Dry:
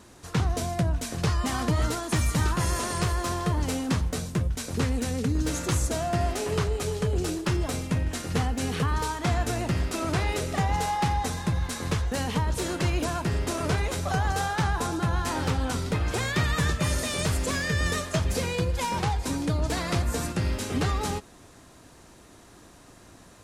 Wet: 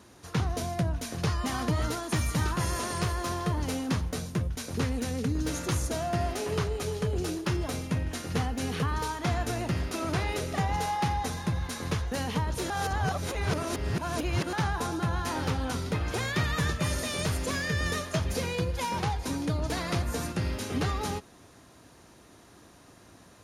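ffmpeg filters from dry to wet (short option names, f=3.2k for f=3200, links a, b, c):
-filter_complex "[0:a]asplit=3[a][b][c];[a]atrim=end=12.702[d];[b]atrim=start=12.698:end=14.532,asetpts=PTS-STARTPTS,areverse[e];[c]atrim=start=14.528[f];[d][e]acrossfade=d=0.004:c1=hsin:c2=hsin[g];[g][f]acrossfade=d=0.004:c1=hsin:c2=hsin,highpass=58,bandreject=f=7.8k:w=6,volume=-2.5dB"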